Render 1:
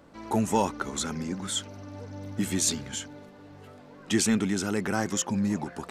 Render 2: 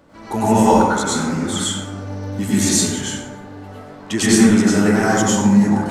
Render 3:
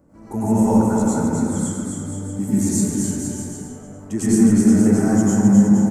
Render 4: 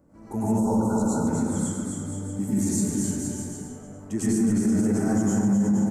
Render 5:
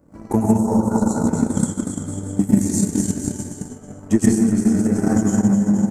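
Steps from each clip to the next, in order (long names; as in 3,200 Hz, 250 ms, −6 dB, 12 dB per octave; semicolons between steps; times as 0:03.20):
dense smooth reverb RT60 1.2 s, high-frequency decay 0.45×, pre-delay 85 ms, DRR −9 dB; level +2.5 dB
drawn EQ curve 220 Hz 0 dB, 2,400 Hz −17 dB, 3,500 Hz −25 dB, 7,300 Hz −5 dB; on a send: bouncing-ball delay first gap 260 ms, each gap 0.8×, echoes 5; on the sum: level −1 dB
brickwall limiter −11 dBFS, peak gain reduction 8.5 dB; time-frequency box erased 0:00.59–0:01.27, 1,500–3,600 Hz; level −4 dB
transient designer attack +12 dB, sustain −8 dB; level +3.5 dB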